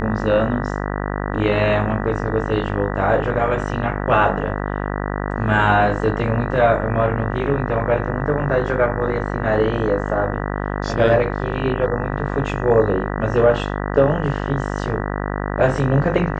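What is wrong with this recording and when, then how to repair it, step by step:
buzz 50 Hz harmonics 39 -24 dBFS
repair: de-hum 50 Hz, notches 39

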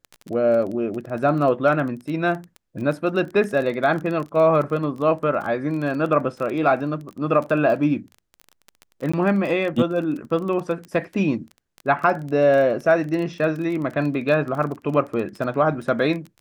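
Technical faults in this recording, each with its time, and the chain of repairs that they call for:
crackle 20/s -28 dBFS
9.12–9.13 gap 15 ms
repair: de-click; interpolate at 9.12, 15 ms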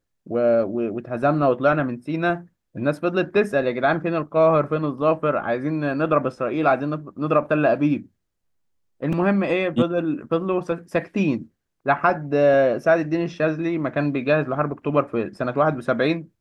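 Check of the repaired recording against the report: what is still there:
none

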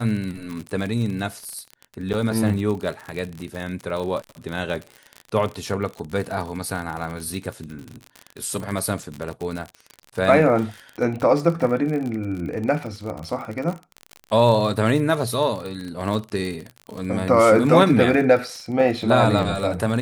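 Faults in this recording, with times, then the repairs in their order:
crackle 43/s -27 dBFS
2.13–2.14 gap 8.5 ms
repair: de-click; interpolate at 2.13, 8.5 ms

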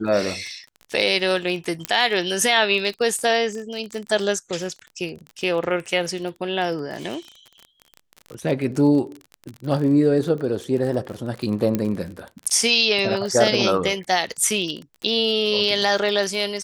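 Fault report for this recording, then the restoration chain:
crackle 30/s -28 dBFS
1.85 pop -8 dBFS
11.75 pop -9 dBFS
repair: de-click

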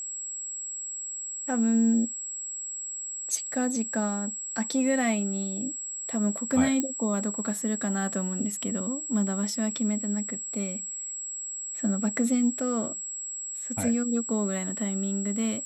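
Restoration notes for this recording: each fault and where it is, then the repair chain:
tone 7700 Hz -33 dBFS
6.8 pop -13 dBFS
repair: de-click; notch 7700 Hz, Q 30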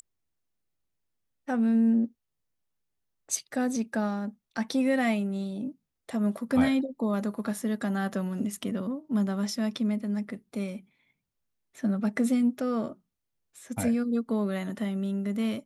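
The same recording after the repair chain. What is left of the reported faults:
6.8 pop

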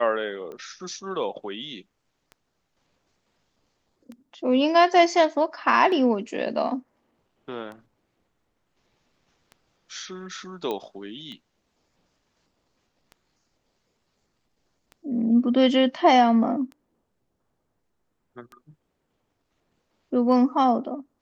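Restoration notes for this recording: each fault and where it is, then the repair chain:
tick 33 1/3 rpm -28 dBFS
10.71 pop -17 dBFS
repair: de-click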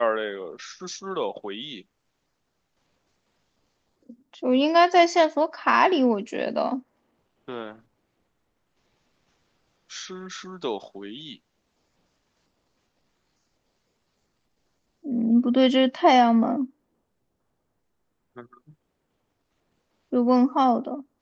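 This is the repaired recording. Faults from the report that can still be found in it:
none

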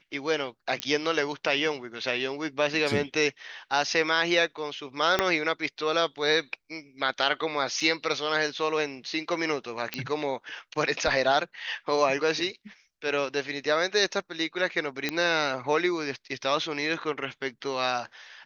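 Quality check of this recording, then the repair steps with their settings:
0.8 pop -12 dBFS
5.19 pop -7 dBFS
7.8 gap 4.6 ms
9.94 pop -13 dBFS
15.09 pop -12 dBFS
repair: de-click; interpolate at 7.8, 4.6 ms

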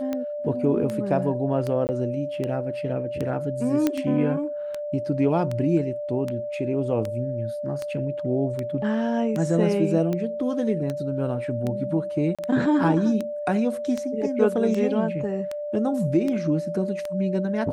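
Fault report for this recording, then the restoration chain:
tick 78 rpm -16 dBFS
tone 590 Hz -28 dBFS
1.87–1.89 gap 19 ms
3.87 pop -9 dBFS
12.35–12.39 gap 36 ms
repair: de-click; notch 590 Hz, Q 30; interpolate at 1.87, 19 ms; interpolate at 12.35, 36 ms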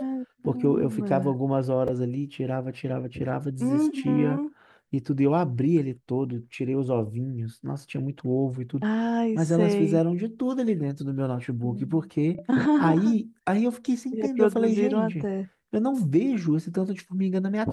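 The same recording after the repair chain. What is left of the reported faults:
none

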